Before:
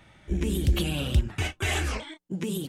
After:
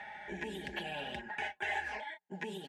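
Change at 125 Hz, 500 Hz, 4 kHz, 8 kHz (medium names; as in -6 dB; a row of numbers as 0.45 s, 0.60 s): -25.0 dB, -9.0 dB, -11.0 dB, -21.0 dB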